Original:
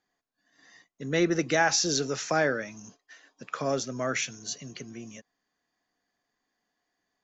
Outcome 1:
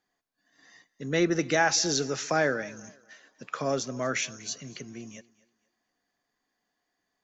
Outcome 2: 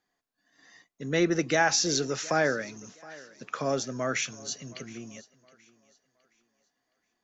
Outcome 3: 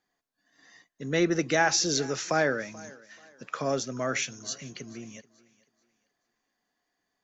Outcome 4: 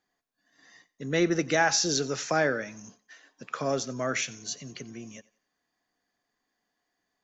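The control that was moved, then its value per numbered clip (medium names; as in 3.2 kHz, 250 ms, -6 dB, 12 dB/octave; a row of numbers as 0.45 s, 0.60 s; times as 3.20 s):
thinning echo, time: 241 ms, 718 ms, 434 ms, 90 ms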